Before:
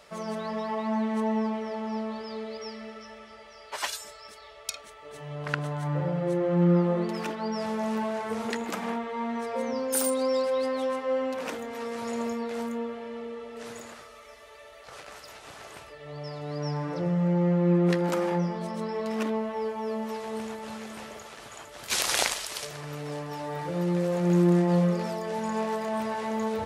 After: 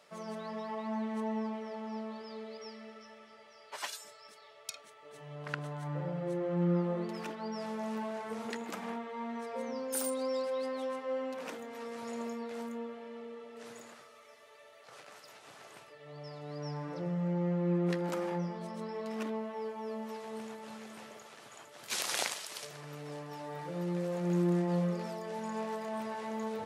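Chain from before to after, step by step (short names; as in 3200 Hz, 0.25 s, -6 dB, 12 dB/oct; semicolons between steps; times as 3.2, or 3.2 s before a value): HPF 120 Hz 24 dB/oct; gain -8 dB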